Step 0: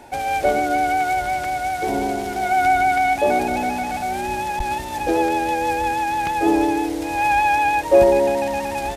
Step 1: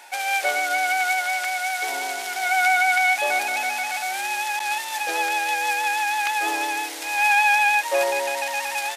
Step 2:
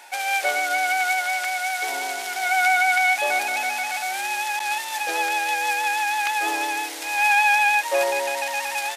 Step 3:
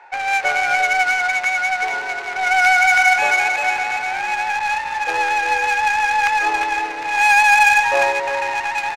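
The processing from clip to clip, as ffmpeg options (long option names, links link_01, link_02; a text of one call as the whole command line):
ffmpeg -i in.wav -af "highpass=1400,volume=6dB" out.wav
ffmpeg -i in.wav -af anull out.wav
ffmpeg -i in.wav -af "highpass=frequency=400:width=0.5412,highpass=frequency=400:width=1.3066,equalizer=frequency=620:width_type=q:width=4:gain=-9,equalizer=frequency=3300:width_type=q:width=4:gain=-9,equalizer=frequency=5200:width_type=q:width=4:gain=-4,lowpass=frequency=7400:width=0.5412,lowpass=frequency=7400:width=1.3066,aecho=1:1:361:0.473,adynamicsmooth=sensitivity=2:basefreq=1500,volume=7dB" out.wav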